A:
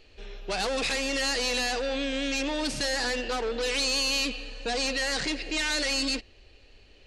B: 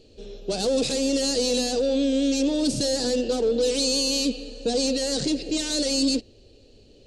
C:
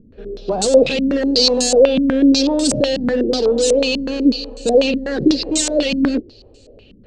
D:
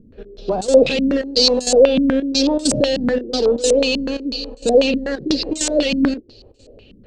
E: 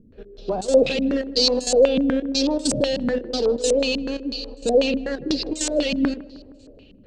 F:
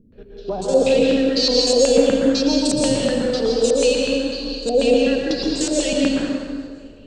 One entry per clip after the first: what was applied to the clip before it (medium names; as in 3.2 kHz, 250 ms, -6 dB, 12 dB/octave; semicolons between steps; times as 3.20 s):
graphic EQ 125/250/500/1000/2000/4000/8000 Hz +11/+9/+10/-7/-12/+5/+8 dB; trim -2 dB
step-sequenced low-pass 8.1 Hz 210–7900 Hz; trim +5.5 dB
trance gate "xxx..xxx.xxxx" 198 bpm -12 dB
filtered feedback delay 156 ms, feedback 66%, low-pass 1.4 kHz, level -18.5 dB; trim -4.5 dB
plate-style reverb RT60 1.7 s, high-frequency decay 0.75×, pre-delay 105 ms, DRR -2.5 dB; trim -1 dB